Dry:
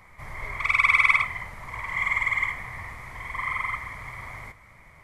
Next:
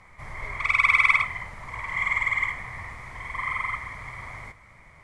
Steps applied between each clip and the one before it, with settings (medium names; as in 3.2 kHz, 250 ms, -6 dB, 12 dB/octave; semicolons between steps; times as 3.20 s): low-pass 9.9 kHz 24 dB/octave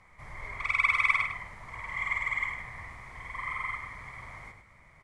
echo from a far wall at 17 m, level -7 dB; trim -6.5 dB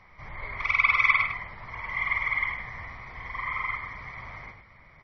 trim +4 dB; MP3 24 kbps 24 kHz